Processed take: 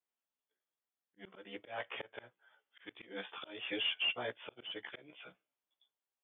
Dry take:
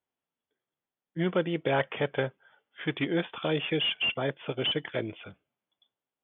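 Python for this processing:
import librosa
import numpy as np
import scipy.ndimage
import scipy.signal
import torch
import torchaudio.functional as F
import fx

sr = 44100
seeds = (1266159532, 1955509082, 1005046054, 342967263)

y = fx.frame_reverse(x, sr, frame_ms=32.0)
y = fx.highpass(y, sr, hz=670.0, slope=6)
y = fx.auto_swell(y, sr, attack_ms=278.0)
y = F.gain(torch.from_numpy(y), -2.0).numpy()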